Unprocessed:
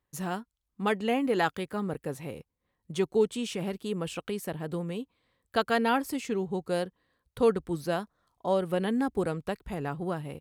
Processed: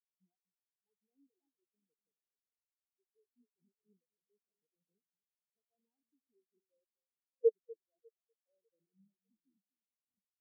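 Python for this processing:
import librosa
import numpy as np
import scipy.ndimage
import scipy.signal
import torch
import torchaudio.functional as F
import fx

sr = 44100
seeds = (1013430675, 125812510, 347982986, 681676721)

p1 = fx.tape_stop_end(x, sr, length_s=1.77)
p2 = scipy.signal.sosfilt(scipy.signal.butter(2, 270.0, 'highpass', fs=sr, output='sos'), p1)
p3 = fx.tilt_eq(p2, sr, slope=-3.0)
p4 = fx.level_steps(p3, sr, step_db=17)
p5 = p4 + 10.0 ** (-5.5 / 20.0) * np.pad(p4, (int(245 * sr / 1000.0), 0))[:len(p4)]
p6 = fx.harmonic_tremolo(p5, sr, hz=4.1, depth_pct=50, crossover_hz=540.0)
p7 = p6 + fx.echo_feedback(p6, sr, ms=599, feedback_pct=58, wet_db=-9, dry=0)
p8 = fx.spectral_expand(p7, sr, expansion=4.0)
y = p8 * librosa.db_to_amplitude(-3.5)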